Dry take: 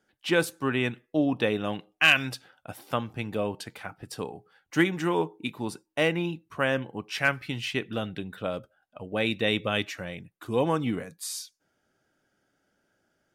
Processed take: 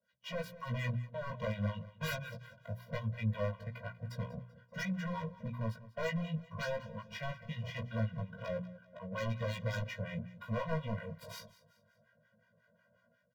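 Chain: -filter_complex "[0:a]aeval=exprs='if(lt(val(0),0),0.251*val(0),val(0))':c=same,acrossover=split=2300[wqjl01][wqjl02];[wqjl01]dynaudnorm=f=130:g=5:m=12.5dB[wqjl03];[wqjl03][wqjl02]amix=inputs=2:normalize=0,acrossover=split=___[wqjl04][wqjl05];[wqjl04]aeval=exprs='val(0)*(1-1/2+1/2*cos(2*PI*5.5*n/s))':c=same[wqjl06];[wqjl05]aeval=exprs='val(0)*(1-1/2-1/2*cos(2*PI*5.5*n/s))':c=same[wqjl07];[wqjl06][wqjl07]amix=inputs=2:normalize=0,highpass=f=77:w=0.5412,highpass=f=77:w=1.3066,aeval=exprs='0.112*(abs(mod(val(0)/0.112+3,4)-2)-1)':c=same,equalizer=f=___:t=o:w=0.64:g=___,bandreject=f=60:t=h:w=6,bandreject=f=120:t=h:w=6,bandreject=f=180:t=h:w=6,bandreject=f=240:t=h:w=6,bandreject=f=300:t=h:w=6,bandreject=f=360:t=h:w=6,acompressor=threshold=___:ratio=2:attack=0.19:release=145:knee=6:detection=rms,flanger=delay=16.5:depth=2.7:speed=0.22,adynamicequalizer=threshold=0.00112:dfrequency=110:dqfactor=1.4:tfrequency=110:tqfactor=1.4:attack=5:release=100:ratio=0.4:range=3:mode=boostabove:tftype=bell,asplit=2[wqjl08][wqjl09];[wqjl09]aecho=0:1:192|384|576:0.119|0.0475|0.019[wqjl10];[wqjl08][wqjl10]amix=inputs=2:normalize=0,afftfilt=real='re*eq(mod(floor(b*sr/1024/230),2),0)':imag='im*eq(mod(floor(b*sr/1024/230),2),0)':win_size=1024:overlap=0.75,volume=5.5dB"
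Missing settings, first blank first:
830, 8800, -14.5, -42dB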